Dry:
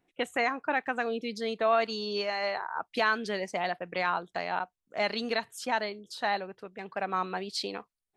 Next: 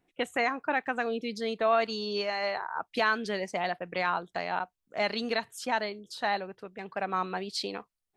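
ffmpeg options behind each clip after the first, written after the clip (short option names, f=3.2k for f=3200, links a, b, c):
-af "lowshelf=f=140:g=3.5"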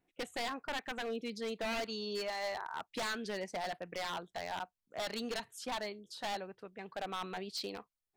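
-af "aeval=exprs='0.0562*(abs(mod(val(0)/0.0562+3,4)-2)-1)':c=same,volume=-6dB"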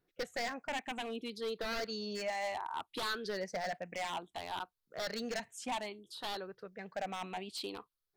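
-af "afftfilt=real='re*pow(10,9/40*sin(2*PI*(0.6*log(max(b,1)*sr/1024/100)/log(2)-(0.62)*(pts-256)/sr)))':imag='im*pow(10,9/40*sin(2*PI*(0.6*log(max(b,1)*sr/1024/100)/log(2)-(0.62)*(pts-256)/sr)))':win_size=1024:overlap=0.75,volume=-1dB"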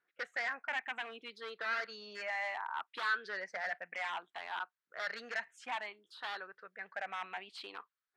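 -af "bandpass=f=1.6k:t=q:w=2.1:csg=0,volume=7.5dB"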